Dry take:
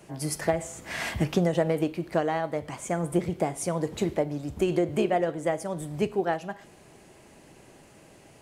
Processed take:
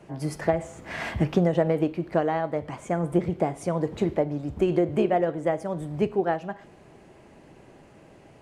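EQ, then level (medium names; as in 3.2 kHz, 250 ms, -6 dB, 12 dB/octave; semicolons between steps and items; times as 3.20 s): low-pass 1.8 kHz 6 dB/octave; +2.5 dB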